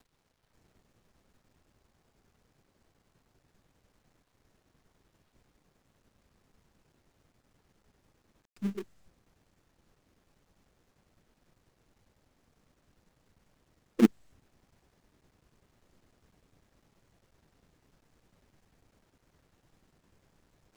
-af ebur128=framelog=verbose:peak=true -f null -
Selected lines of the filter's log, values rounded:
Integrated loudness:
  I:         -30.2 LUFS
  Threshold: -49.6 LUFS
Loudness range:
  LRA:        10.8 LU
  Threshold: -60.2 LUFS
  LRA low:   -46.1 LUFS
  LRA high:  -35.3 LUFS
True peak:
  Peak:       -7.4 dBFS